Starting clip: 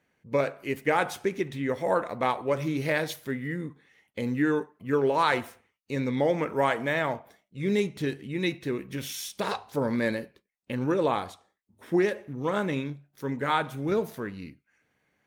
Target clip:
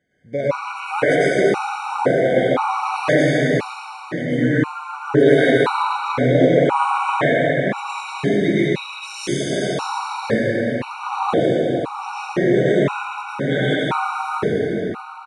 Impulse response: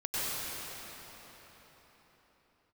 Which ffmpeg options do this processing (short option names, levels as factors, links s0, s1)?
-filter_complex "[0:a]aresample=22050,aresample=44100[s0];[1:a]atrim=start_sample=2205[s1];[s0][s1]afir=irnorm=-1:irlink=0,afftfilt=real='re*gt(sin(2*PI*0.97*pts/sr)*(1-2*mod(floor(b*sr/1024/750),2)),0)':imag='im*gt(sin(2*PI*0.97*pts/sr)*(1-2*mod(floor(b*sr/1024/750),2)),0)':win_size=1024:overlap=0.75,volume=1.68"